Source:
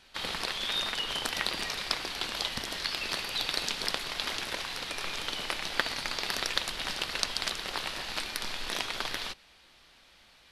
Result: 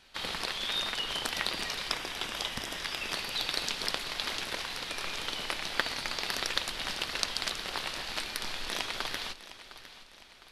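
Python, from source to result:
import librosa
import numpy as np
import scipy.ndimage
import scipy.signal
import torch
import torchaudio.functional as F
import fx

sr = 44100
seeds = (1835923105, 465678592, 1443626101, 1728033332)

p1 = fx.notch(x, sr, hz=4300.0, q=5.6, at=(1.9, 3.14))
p2 = p1 + fx.echo_feedback(p1, sr, ms=708, feedback_pct=46, wet_db=-15.0, dry=0)
y = p2 * librosa.db_to_amplitude(-1.0)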